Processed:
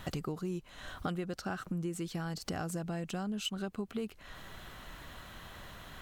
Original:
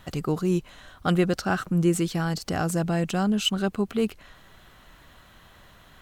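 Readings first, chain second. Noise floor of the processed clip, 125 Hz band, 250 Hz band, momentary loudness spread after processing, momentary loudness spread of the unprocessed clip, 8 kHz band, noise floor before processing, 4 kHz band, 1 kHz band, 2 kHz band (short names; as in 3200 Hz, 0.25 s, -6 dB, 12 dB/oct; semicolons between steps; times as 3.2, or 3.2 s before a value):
-56 dBFS, -12.5 dB, -13.0 dB, 12 LU, 5 LU, -11.0 dB, -54 dBFS, -11.5 dB, -11.5 dB, -11.0 dB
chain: compressor 8:1, threshold -38 dBFS, peak gain reduction 20.5 dB; gain +3.5 dB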